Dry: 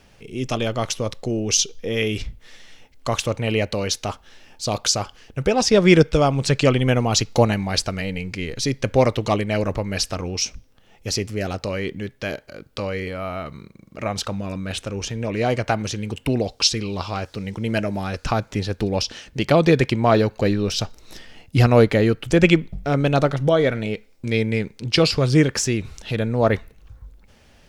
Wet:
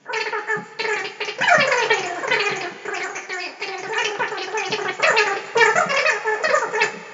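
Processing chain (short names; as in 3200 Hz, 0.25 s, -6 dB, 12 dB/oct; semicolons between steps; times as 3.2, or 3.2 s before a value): wide varispeed 3.88×; two-slope reverb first 0.21 s, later 2.6 s, from -22 dB, DRR -3 dB; FFT band-pass 120–7300 Hz; gain -4 dB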